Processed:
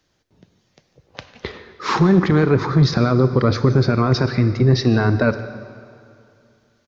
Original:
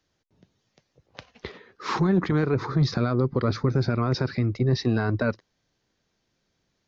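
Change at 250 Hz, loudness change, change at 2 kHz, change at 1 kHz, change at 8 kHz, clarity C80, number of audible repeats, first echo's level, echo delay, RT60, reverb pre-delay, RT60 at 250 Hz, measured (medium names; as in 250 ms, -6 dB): +7.5 dB, +8.0 dB, +8.0 dB, +8.0 dB, no reading, 11.5 dB, 1, -19.5 dB, 148 ms, 2.5 s, 24 ms, 2.4 s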